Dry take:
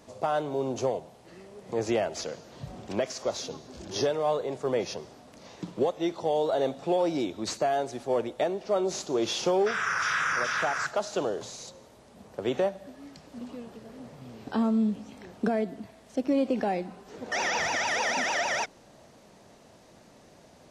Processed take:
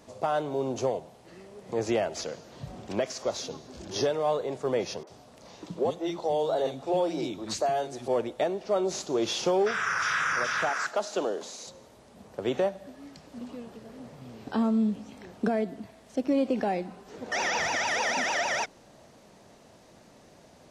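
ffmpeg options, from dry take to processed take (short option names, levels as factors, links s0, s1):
-filter_complex "[0:a]asettb=1/sr,asplit=3[s0][s1][s2];[s0]atrim=end=5.034[s3];[s1]atrim=start=5.03:end=8.08,asetpts=PTS-STARTPTS,afade=t=in:d=0.004:c=qsin,afade=t=out:st=3.046:d=0.004:c=qsin,acrossover=split=280|1800[s4][s5][s6];[s6]adelay=40[s7];[s4]adelay=70[s8];[s8][s5][s7]amix=inputs=3:normalize=0,atrim=end_sample=134505[s9];[s2]atrim=start=8.076[s10];[s3][s9]acrossfade=d=0.004:c1=hsin:c2=qsin[s11];[s11][s10]acrossfade=d=0.004:c1=qsin:c2=hsin,asettb=1/sr,asplit=3[s12][s13][s14];[s12]atrim=end=10.694[s15];[s13]atrim=start=10.69:end=11.67,asetpts=PTS-STARTPTS,afade=t=in:d=0.004:c=qsin,afade=t=out:st=0.976:d=0.004:c=qsin,highpass=f=200:w=0.5412,highpass=f=200:w=1.3066[s16];[s14]atrim=start=11.666[s17];[s15][s16]acrossfade=d=0.004:c1=hsin:c2=qsin[s18];[s18][s17]acrossfade=d=0.004:c1=qsin:c2=hsin"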